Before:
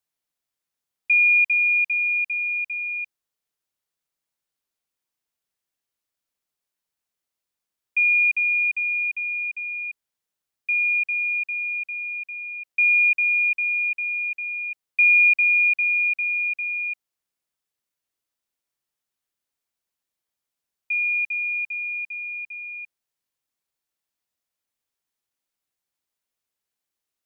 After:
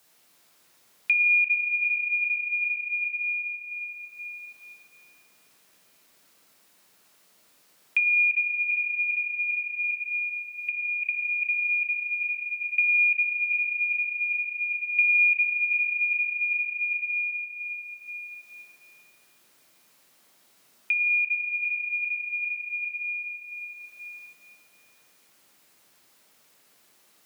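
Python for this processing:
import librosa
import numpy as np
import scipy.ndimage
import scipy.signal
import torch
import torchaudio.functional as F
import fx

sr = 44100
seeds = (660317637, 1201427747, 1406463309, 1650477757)

y = fx.over_compress(x, sr, threshold_db=-27.0, ratio=-0.5, at=(9.84, 12.33))
y = fx.room_shoebox(y, sr, seeds[0], volume_m3=130.0, walls='hard', distance_m=0.51)
y = fx.band_squash(y, sr, depth_pct=70)
y = F.gain(torch.from_numpy(y), 1.0).numpy()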